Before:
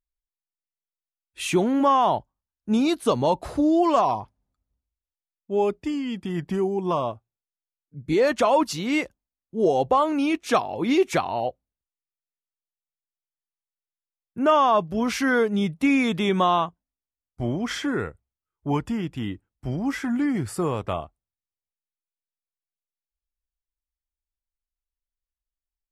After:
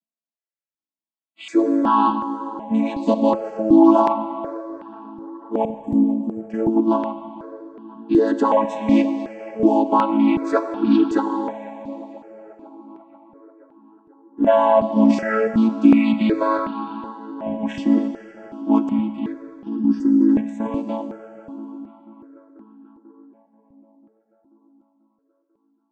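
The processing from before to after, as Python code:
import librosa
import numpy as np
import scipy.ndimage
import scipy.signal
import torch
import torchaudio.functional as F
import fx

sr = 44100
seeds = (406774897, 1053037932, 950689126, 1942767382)

p1 = fx.chord_vocoder(x, sr, chord='major triad', root=57)
p2 = fx.cheby2_bandstop(p1, sr, low_hz=870.0, high_hz=4000.0, order=4, stop_db=50, at=(5.65, 6.46))
p3 = fx.vibrato(p2, sr, rate_hz=0.78, depth_cents=25.0)
p4 = fx.level_steps(p3, sr, step_db=13)
p5 = p3 + (p4 * 10.0 ** (3.0 / 20.0))
p6 = fx.spec_box(p5, sr, start_s=19.68, length_s=0.61, low_hz=560.0, high_hz=4400.0, gain_db=-12)
p7 = p6 + fx.echo_tape(p6, sr, ms=489, feedback_pct=75, wet_db=-17.0, lp_hz=2500.0, drive_db=7.0, wow_cents=28, dry=0)
p8 = fx.rev_schroeder(p7, sr, rt60_s=3.0, comb_ms=29, drr_db=9.0)
p9 = fx.phaser_held(p8, sr, hz=2.7, low_hz=390.0, high_hz=2100.0)
y = p9 * 10.0 ** (3.5 / 20.0)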